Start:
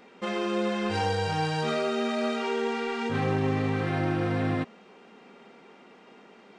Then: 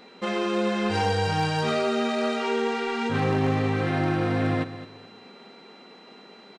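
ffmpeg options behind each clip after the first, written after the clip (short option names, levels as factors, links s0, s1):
-af "aeval=exprs='val(0)+0.00126*sin(2*PI*4000*n/s)':c=same,aecho=1:1:213|426|639:0.211|0.055|0.0143,aeval=exprs='0.133*(abs(mod(val(0)/0.133+3,4)-2)-1)':c=same,volume=1.41"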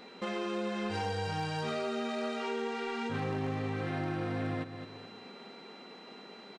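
-af "acompressor=threshold=0.0141:ratio=2,volume=0.841"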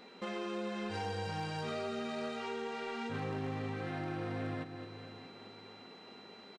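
-af "aecho=1:1:628|1256|1884:0.178|0.0551|0.0171,volume=0.631"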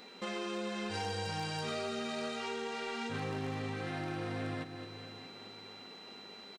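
-af "highshelf=f=3300:g=9.5"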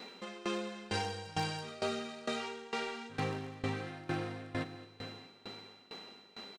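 -af "aeval=exprs='val(0)*pow(10,-20*if(lt(mod(2.2*n/s,1),2*abs(2.2)/1000),1-mod(2.2*n/s,1)/(2*abs(2.2)/1000),(mod(2.2*n/s,1)-2*abs(2.2)/1000)/(1-2*abs(2.2)/1000))/20)':c=same,volume=2"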